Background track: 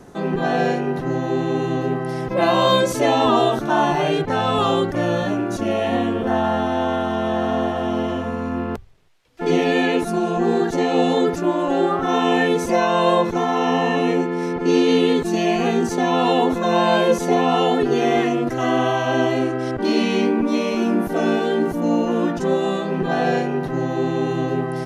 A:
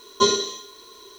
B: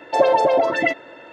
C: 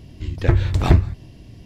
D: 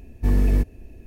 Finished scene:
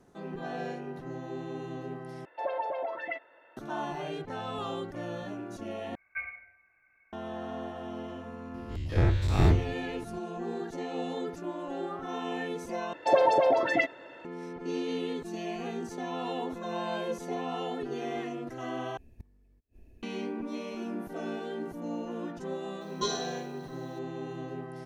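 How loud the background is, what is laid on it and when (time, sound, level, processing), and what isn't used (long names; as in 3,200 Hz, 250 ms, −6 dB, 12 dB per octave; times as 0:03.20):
background track −17 dB
0:02.25: overwrite with B −14.5 dB + three-way crossover with the lows and the highs turned down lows −15 dB, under 490 Hz, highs −24 dB, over 3,200 Hz
0:05.95: overwrite with A −17.5 dB + voice inversion scrambler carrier 2,600 Hz
0:08.54: mix in C −13 dB + every bin's largest magnitude spread in time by 120 ms
0:12.93: overwrite with B −6.5 dB
0:18.97: overwrite with D −13 dB + gate with flip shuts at −22 dBFS, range −33 dB
0:22.81: mix in A −13 dB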